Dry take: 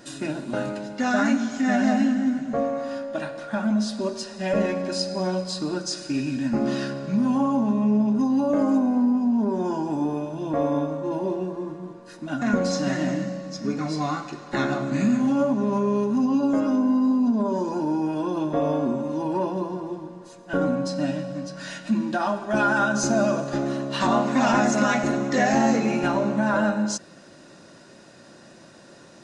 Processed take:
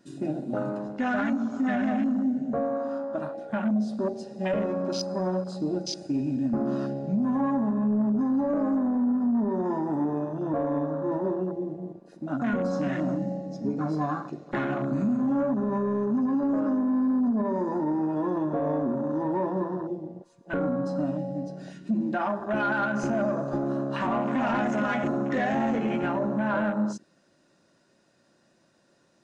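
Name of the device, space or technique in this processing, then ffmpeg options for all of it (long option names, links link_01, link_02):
soft clipper into limiter: -af "afwtdn=0.0251,asoftclip=type=tanh:threshold=-13.5dB,alimiter=limit=-19.5dB:level=0:latency=1:release=144"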